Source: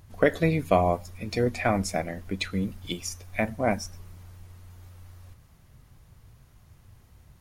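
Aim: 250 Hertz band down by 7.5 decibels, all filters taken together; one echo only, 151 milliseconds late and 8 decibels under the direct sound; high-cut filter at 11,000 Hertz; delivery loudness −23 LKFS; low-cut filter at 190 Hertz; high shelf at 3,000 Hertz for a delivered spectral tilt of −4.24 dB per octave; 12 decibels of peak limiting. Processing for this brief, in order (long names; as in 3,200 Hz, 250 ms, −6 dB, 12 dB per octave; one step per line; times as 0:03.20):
high-pass filter 190 Hz
low-pass filter 11,000 Hz
parametric band 250 Hz −8 dB
high-shelf EQ 3,000 Hz −5 dB
brickwall limiter −21.5 dBFS
single-tap delay 151 ms −8 dB
level +12 dB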